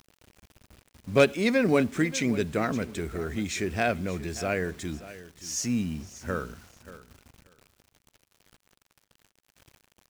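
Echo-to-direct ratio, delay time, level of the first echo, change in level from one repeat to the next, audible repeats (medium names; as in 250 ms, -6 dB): -16.0 dB, 581 ms, -16.0 dB, -15.5 dB, 2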